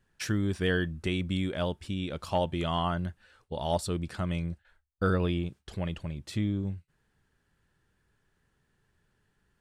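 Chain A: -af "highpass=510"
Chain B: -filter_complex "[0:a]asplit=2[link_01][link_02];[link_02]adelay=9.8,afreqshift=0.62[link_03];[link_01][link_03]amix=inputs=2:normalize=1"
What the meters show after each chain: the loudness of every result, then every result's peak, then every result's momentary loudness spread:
−36.5, −35.0 LKFS; −15.5, −16.5 dBFS; 12, 12 LU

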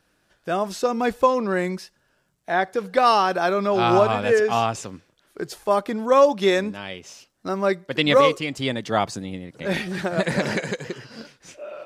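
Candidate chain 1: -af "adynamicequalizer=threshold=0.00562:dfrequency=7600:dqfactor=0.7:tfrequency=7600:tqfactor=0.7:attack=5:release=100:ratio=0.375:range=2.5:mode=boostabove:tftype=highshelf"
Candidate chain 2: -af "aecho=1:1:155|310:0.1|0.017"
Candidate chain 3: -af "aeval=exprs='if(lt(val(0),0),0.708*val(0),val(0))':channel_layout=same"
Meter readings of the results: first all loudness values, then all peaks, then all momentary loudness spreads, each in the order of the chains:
−21.5, −21.5, −23.0 LKFS; −5.5, −5.5, −5.5 dBFS; 18, 18, 18 LU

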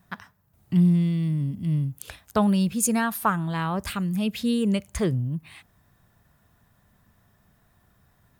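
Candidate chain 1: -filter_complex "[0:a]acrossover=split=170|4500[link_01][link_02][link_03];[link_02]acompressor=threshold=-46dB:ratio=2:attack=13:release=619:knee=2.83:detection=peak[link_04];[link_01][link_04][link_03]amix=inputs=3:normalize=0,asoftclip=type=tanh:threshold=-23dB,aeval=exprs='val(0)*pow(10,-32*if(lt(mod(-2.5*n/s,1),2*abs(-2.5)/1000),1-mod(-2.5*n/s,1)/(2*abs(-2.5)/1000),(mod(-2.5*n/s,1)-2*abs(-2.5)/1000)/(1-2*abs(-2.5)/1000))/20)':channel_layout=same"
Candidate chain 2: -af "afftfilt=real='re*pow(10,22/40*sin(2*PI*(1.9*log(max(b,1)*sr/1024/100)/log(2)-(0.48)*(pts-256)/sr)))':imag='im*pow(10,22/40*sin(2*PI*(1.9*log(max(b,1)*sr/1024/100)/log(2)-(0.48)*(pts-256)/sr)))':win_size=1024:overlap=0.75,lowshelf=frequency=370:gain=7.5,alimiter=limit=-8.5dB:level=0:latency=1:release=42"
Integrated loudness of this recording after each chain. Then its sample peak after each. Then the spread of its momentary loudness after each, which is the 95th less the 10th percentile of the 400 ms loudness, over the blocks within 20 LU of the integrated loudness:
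−41.0, −18.0 LKFS; −23.5, −8.5 dBFS; 10, 12 LU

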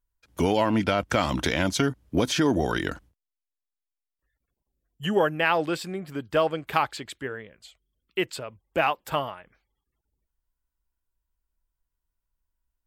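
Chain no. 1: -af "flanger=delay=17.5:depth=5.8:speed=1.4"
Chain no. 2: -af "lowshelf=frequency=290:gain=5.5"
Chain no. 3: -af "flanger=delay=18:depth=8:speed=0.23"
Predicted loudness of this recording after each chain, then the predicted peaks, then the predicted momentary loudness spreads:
−29.0, −24.5, −29.5 LKFS; −10.0, −5.5, −10.0 dBFS; 13, 13, 12 LU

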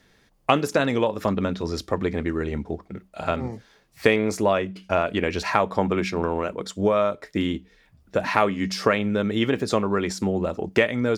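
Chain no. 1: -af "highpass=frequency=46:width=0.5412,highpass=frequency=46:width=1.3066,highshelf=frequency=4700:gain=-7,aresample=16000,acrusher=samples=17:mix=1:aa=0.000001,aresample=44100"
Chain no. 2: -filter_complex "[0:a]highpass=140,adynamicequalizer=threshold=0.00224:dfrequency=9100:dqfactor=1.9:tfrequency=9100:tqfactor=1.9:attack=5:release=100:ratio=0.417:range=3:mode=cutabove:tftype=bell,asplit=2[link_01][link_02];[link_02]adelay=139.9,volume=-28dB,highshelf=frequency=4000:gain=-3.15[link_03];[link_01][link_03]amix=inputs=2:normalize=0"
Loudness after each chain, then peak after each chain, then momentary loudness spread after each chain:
−24.5, −24.5 LKFS; −1.5, −1.5 dBFS; 8, 9 LU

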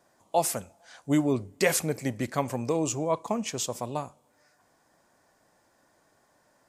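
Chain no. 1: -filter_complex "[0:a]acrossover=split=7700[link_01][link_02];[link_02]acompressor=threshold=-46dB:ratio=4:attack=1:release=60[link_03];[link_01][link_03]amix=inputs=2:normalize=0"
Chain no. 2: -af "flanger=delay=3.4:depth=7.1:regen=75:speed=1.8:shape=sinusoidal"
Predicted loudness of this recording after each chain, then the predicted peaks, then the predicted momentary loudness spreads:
−29.0, −33.0 LKFS; −10.0, −14.5 dBFS; 9, 10 LU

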